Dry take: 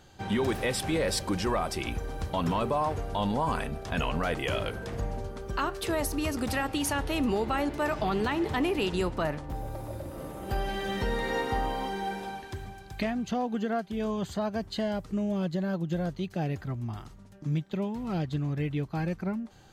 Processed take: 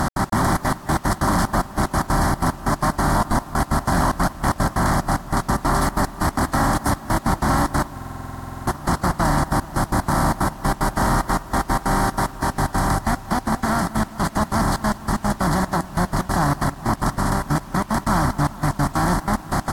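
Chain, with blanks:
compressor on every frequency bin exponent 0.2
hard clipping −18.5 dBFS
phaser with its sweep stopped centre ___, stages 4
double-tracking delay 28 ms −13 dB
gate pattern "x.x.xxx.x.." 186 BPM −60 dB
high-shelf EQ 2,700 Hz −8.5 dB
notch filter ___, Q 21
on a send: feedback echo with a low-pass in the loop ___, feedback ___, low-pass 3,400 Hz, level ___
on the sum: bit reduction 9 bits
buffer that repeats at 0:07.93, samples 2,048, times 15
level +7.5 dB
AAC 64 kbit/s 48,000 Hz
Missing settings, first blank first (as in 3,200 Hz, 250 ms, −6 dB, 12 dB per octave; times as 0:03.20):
1,100 Hz, 3,700 Hz, 212 ms, 81%, −18.5 dB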